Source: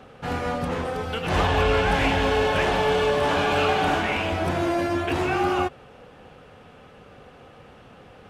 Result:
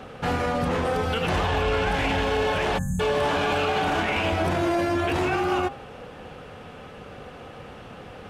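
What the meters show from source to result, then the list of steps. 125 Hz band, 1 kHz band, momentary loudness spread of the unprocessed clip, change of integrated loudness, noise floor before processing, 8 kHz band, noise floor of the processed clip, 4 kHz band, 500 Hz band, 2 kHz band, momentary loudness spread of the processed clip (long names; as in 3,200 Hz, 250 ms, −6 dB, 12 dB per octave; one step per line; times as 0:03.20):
−0.5 dB, −1.5 dB, 7 LU, −1.0 dB, −49 dBFS, −0.5 dB, −43 dBFS, −1.5 dB, −1.5 dB, −1.5 dB, 19 LU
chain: time-frequency box erased 0:02.78–0:03.00, 240–6,200 Hz
brickwall limiter −22.5 dBFS, peak gain reduction 11 dB
hum removal 133.6 Hz, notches 13
level +6.5 dB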